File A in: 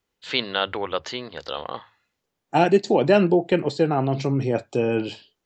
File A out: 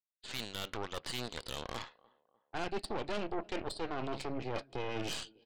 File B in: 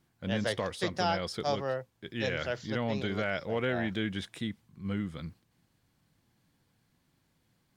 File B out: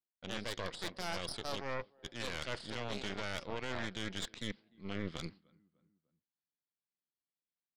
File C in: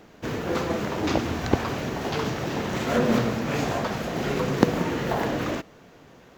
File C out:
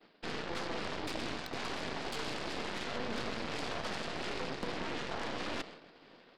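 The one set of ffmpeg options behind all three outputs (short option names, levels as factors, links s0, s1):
-filter_complex "[0:a]agate=range=0.0224:threshold=0.00708:ratio=3:detection=peak,highshelf=f=3100:g=11.5,aresample=11025,asoftclip=type=tanh:threshold=0.355,aresample=44100,highpass=210,areverse,acompressor=threshold=0.01:ratio=4,areverse,asplit=2[s0][s1];[s1]adelay=299,lowpass=f=1300:p=1,volume=0.0668,asplit=2[s2][s3];[s3]adelay=299,lowpass=f=1300:p=1,volume=0.51,asplit=2[s4][s5];[s5]adelay=299,lowpass=f=1300:p=1,volume=0.51[s6];[s0][s2][s4][s6]amix=inputs=4:normalize=0,aeval=exprs='0.0531*(cos(1*acos(clip(val(0)/0.0531,-1,1)))-cos(1*PI/2))+0.0133*(cos(6*acos(clip(val(0)/0.0531,-1,1)))-cos(6*PI/2))+0.00168*(cos(7*acos(clip(val(0)/0.0531,-1,1)))-cos(7*PI/2))':c=same,alimiter=level_in=1.58:limit=0.0631:level=0:latency=1:release=28,volume=0.631,volume=1.26"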